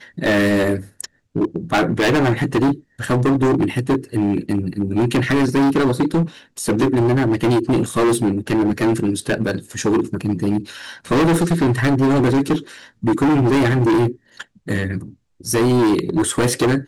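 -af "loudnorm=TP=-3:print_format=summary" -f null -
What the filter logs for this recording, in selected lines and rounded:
Input Integrated:    -18.3 LUFS
Input True Peak:     -10.7 dBTP
Input LRA:             2.0 LU
Input Threshold:     -28.7 LUFS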